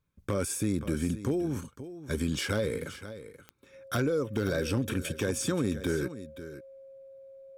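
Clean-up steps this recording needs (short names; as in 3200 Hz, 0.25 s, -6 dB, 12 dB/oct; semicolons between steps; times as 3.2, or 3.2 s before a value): clip repair -19.5 dBFS; de-click; notch 540 Hz, Q 30; inverse comb 0.526 s -13.5 dB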